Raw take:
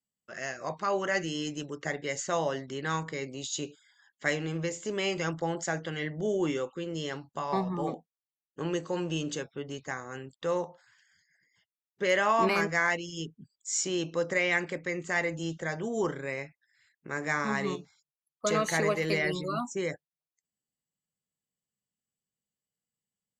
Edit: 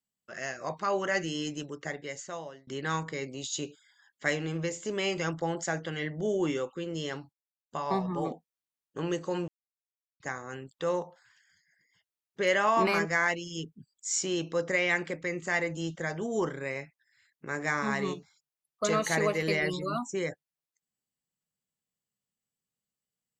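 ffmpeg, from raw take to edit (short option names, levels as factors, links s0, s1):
-filter_complex "[0:a]asplit=5[s0][s1][s2][s3][s4];[s0]atrim=end=2.67,asetpts=PTS-STARTPTS,afade=t=out:st=1.52:d=1.15:silence=0.0668344[s5];[s1]atrim=start=2.67:end=7.33,asetpts=PTS-STARTPTS,afade=t=in:d=0.004:c=hsin:silence=0.0668344,afade=t=out:st=4.656:d=0.004:c=hsin,apad=pad_dur=0.38[s6];[s2]atrim=start=7.33:end=9.1,asetpts=PTS-STARTPTS,afade=t=in:d=0.004:c=hsin,afade=t=out:st=1.766:d=0.004:c=hsin[s7];[s3]atrim=start=9.1:end=9.82,asetpts=PTS-STARTPTS,volume=0[s8];[s4]atrim=start=9.82,asetpts=PTS-STARTPTS,afade=t=in:d=0.004:c=hsin[s9];[s5][s6][s7][s8][s9]concat=n=5:v=0:a=1"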